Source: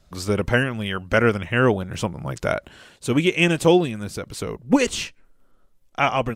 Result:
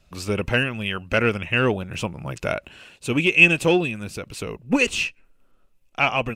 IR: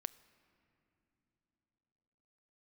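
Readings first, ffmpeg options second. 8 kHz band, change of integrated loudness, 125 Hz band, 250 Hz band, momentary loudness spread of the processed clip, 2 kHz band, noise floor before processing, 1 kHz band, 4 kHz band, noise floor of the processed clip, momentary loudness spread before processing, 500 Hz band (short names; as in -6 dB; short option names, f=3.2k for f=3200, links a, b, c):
-2.5 dB, +0.5 dB, -2.5 dB, -3.0 dB, 18 LU, +4.0 dB, -58 dBFS, -3.0 dB, +1.0 dB, -60 dBFS, 13 LU, -3.0 dB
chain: -af "acontrast=32,equalizer=f=2.6k:w=5.7:g=14,volume=-7.5dB"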